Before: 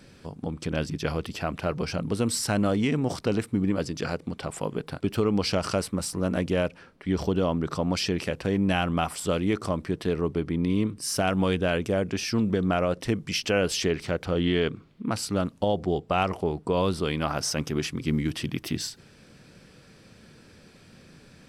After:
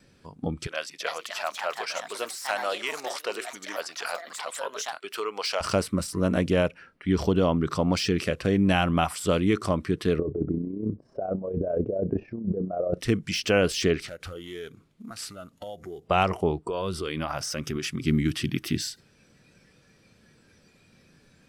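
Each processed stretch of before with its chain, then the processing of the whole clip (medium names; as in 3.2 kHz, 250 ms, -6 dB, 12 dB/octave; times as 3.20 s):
0.67–5.61 s: high-pass 670 Hz + ever faster or slower copies 333 ms, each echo +4 st, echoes 2, each echo -6 dB
10.19–12.94 s: compressor with a negative ratio -28 dBFS, ratio -0.5 + AM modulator 31 Hz, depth 35% + resonant low-pass 600 Hz, resonance Q 2.3
14.08–16.08 s: CVSD coder 64 kbps + compression 5:1, threshold -35 dBFS
16.64–18.02 s: band-stop 4.1 kHz, Q 15 + compression 10:1, threshold -26 dBFS
whole clip: spectral noise reduction 10 dB; de-esser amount 65%; gate with hold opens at -59 dBFS; trim +2.5 dB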